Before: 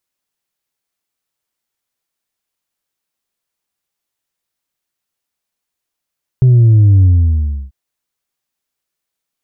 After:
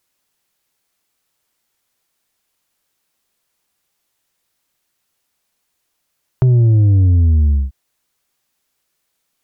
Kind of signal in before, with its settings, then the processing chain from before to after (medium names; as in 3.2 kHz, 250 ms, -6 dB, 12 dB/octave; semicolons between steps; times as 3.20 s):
sub drop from 130 Hz, over 1.29 s, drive 2 dB, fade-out 0.68 s, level -5 dB
compression 6:1, threshold -18 dBFS; sine folder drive 5 dB, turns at -7.5 dBFS